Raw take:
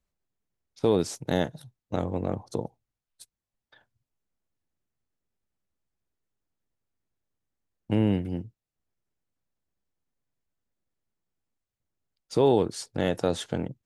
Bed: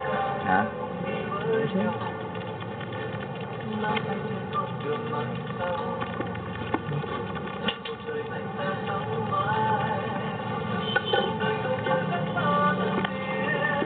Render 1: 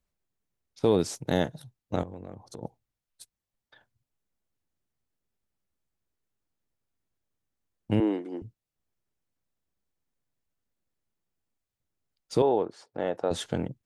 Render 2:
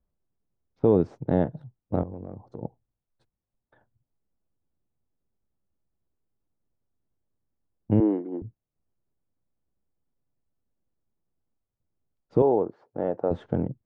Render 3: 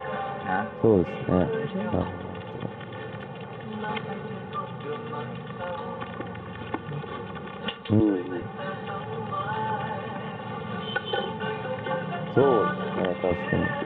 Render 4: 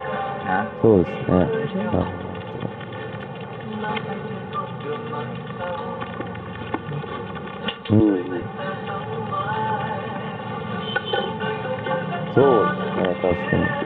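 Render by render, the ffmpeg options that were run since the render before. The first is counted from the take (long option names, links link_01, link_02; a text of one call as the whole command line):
ffmpeg -i in.wav -filter_complex "[0:a]asettb=1/sr,asplit=3[link_01][link_02][link_03];[link_01]atrim=end=2.034[link_04];[link_02]atrim=start=2.03:end=2.63,asetpts=PTS-STARTPTS,afade=type=in:duration=0.004:curve=qsin,afade=type=out:start_time=0.596:duration=0.004:curve=qsin,acompressor=threshold=-44dB:ratio=2.5:attack=3.2:release=140:knee=1:detection=peak[link_05];[link_03]atrim=start=2.626[link_06];[link_04][link_05]acrossfade=duration=0.004:curve1=hsin:curve2=qsin[link_07];[link_07][link_06]acrossfade=duration=0.004:curve1=qsin:curve2=hsin,asettb=1/sr,asplit=3[link_08][link_09][link_10];[link_08]atrim=end=8.004[link_11];[link_09]atrim=start=8:end=8.42,asetpts=PTS-STARTPTS,afade=type=in:duration=0.004:curve=qsin,afade=type=out:start_time=0.416:duration=0.004:curve=qsin,highpass=frequency=310:width=0.5412,highpass=frequency=310:width=1.3066,equalizer=frequency=320:width_type=q:width=4:gain=7,equalizer=frequency=550:width_type=q:width=4:gain=-4,equalizer=frequency=1100:width_type=q:width=4:gain=6,equalizer=frequency=1600:width_type=q:width=4:gain=-3,equalizer=frequency=2700:width_type=q:width=4:gain=-10,equalizer=frequency=5000:width_type=q:width=4:gain=-5,lowpass=frequency=7700:width=0.5412,lowpass=frequency=7700:width=1.3066[link_12];[link_10]atrim=start=8.416[link_13];[link_11][link_12]acrossfade=duration=0.004:curve1=hsin:curve2=qsin[link_14];[link_14][link_13]acrossfade=duration=0.004:curve1=qsin:curve2=hsin,asettb=1/sr,asplit=3[link_15][link_16][link_17];[link_15]atrim=end=12.424[link_18];[link_16]atrim=start=12.42:end=13.31,asetpts=PTS-STARTPTS,afade=type=in:duration=0.004:curve=qsin,afade=type=out:start_time=0.886:duration=0.004:curve=qsin,bandpass=frequency=740:width_type=q:width=0.87[link_19];[link_17]atrim=start=13.306[link_20];[link_18][link_19]acrossfade=duration=0.004:curve1=hsin:curve2=qsin[link_21];[link_21][link_20]acrossfade=duration=0.004:curve1=qsin:curve2=hsin" out.wav
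ffmpeg -i in.wav -af "lowpass=1100,lowshelf=frequency=500:gain=5" out.wav
ffmpeg -i in.wav -i bed.wav -filter_complex "[1:a]volume=-4dB[link_01];[0:a][link_01]amix=inputs=2:normalize=0" out.wav
ffmpeg -i in.wav -af "volume=5dB,alimiter=limit=-3dB:level=0:latency=1" out.wav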